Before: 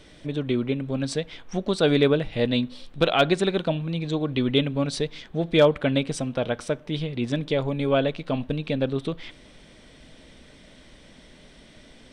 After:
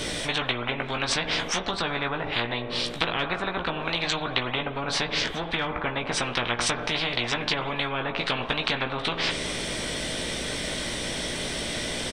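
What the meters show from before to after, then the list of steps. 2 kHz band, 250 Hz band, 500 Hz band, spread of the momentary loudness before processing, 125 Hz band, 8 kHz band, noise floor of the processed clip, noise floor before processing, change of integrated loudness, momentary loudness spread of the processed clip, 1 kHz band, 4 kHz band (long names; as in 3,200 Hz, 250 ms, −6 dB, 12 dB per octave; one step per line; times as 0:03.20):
+6.0 dB, −8.0 dB, −7.5 dB, 11 LU, −7.0 dB, +9.5 dB, −34 dBFS, −51 dBFS, −2.5 dB, 4 LU, +3.5 dB, +5.5 dB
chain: high-shelf EQ 7,300 Hz +12 dB
treble cut that deepens with the level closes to 740 Hz, closed at −19 dBFS
double-tracking delay 17 ms −6 dB
spring reverb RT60 1.3 s, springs 42 ms, chirp 55 ms, DRR 16.5 dB
every bin compressed towards the loudest bin 10 to 1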